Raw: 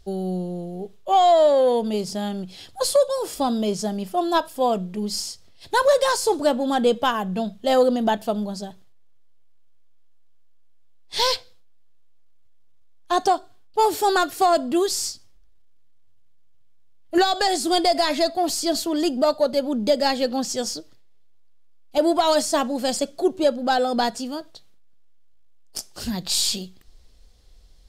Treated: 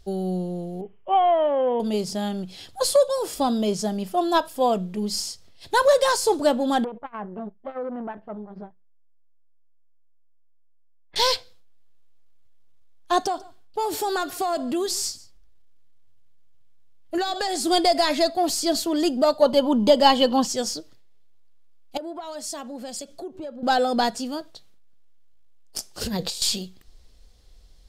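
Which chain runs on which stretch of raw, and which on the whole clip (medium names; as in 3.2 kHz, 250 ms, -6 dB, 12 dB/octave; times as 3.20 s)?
0.81–1.80 s: rippled Chebyshev low-pass 3.1 kHz, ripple 3 dB + peaking EQ 600 Hz -5.5 dB 0.55 oct
6.84–11.16 s: low-pass 1.9 kHz 24 dB/octave + compression 8:1, threshold -26 dBFS + transformer saturation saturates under 540 Hz
13.21–17.61 s: compression 4:1, threshold -22 dBFS + delay 143 ms -21 dB
19.42–20.47 s: bass shelf 420 Hz +5 dB + small resonant body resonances 990/3000 Hz, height 17 dB, ringing for 25 ms
21.97–23.63 s: compression 10:1, threshold -31 dBFS + three bands expanded up and down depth 100%
26.01–26.42 s: peaking EQ 480 Hz +14 dB 0.4 oct + compressor with a negative ratio -27 dBFS, ratio -0.5
whole clip: none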